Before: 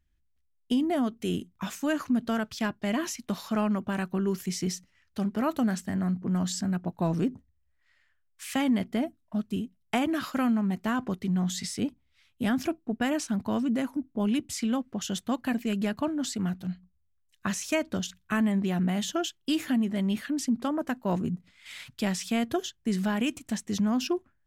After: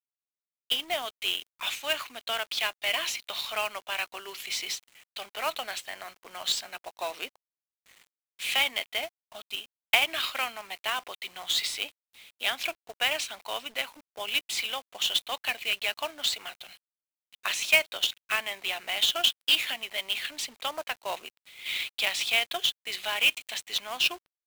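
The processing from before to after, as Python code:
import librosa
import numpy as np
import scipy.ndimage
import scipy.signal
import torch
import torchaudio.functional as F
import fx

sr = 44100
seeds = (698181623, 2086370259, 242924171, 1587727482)

y = scipy.signal.sosfilt(scipy.signal.butter(4, 600.0, 'highpass', fs=sr, output='sos'), x)
y = fx.band_shelf(y, sr, hz=3000.0, db=13.5, octaves=1.2)
y = fx.quant_companded(y, sr, bits=4)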